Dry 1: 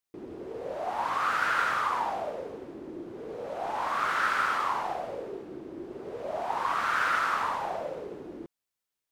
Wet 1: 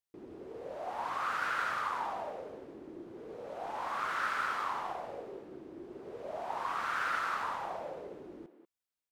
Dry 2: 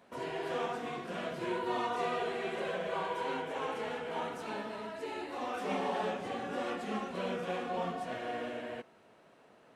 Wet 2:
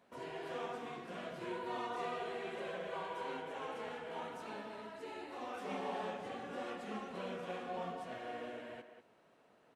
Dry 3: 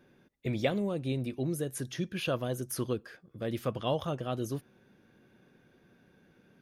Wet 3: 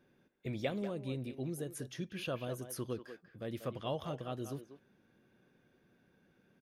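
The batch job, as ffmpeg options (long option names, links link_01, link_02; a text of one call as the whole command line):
ffmpeg -i in.wav -filter_complex "[0:a]asplit=2[link_01][link_02];[link_02]adelay=190,highpass=300,lowpass=3400,asoftclip=type=hard:threshold=-23.5dB,volume=-9dB[link_03];[link_01][link_03]amix=inputs=2:normalize=0,volume=-7dB" out.wav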